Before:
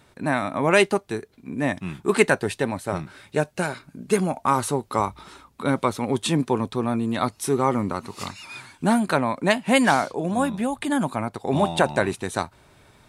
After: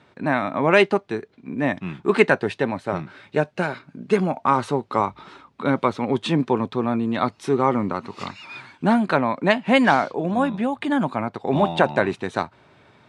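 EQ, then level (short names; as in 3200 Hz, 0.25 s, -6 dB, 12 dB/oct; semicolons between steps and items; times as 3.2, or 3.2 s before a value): BPF 120–3600 Hz; +2.0 dB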